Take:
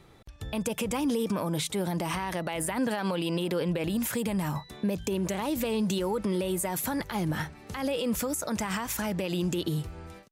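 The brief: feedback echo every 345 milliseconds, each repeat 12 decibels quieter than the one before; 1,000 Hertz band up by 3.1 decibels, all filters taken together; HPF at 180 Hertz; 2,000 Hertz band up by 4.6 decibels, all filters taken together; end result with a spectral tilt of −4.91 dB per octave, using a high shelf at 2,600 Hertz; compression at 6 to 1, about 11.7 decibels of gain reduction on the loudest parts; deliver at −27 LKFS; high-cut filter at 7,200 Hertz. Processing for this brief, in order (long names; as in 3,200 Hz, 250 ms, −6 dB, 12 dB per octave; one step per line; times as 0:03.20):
high-pass filter 180 Hz
low-pass filter 7,200 Hz
parametric band 1,000 Hz +3 dB
parametric band 2,000 Hz +7 dB
high-shelf EQ 2,600 Hz −5 dB
downward compressor 6 to 1, threshold −38 dBFS
repeating echo 345 ms, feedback 25%, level −12 dB
level +14 dB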